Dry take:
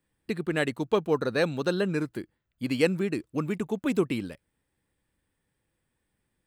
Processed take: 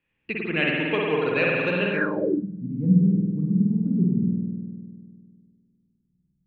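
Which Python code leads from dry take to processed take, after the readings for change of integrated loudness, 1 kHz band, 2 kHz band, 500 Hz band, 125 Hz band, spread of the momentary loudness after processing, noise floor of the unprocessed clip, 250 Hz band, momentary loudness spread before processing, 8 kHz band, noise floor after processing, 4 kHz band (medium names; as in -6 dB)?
+5.0 dB, +2.5 dB, +8.0 dB, +1.0 dB, +10.0 dB, 12 LU, -80 dBFS, +7.0 dB, 10 LU, under -20 dB, -74 dBFS, no reading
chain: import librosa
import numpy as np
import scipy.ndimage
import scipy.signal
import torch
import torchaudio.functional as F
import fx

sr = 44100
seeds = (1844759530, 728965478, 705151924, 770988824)

y = fx.rev_spring(x, sr, rt60_s=2.1, pass_ms=(50,), chirp_ms=35, drr_db=-3.5)
y = fx.filter_sweep_lowpass(y, sr, from_hz=2600.0, to_hz=180.0, start_s=1.92, end_s=2.47, q=7.5)
y = F.gain(torch.from_numpy(y), -4.0).numpy()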